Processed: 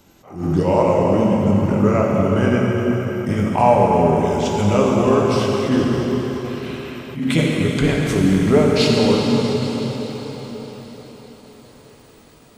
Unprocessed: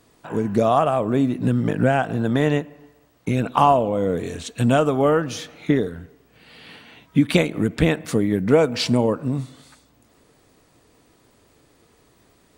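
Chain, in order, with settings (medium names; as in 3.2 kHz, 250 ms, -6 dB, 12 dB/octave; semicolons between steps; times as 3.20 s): pitch bend over the whole clip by -4 st ending unshifted; in parallel at +1 dB: compression, threshold -28 dBFS, peak gain reduction 16.5 dB; on the sum: band-stop 1.8 kHz, Q 15; on a send: thinning echo 205 ms, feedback 79%, high-pass 160 Hz, level -17 dB; on the sum: plate-style reverb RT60 4.7 s, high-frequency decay 0.9×, DRR -2.5 dB; attacks held to a fixed rise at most 130 dB/s; trim -1.5 dB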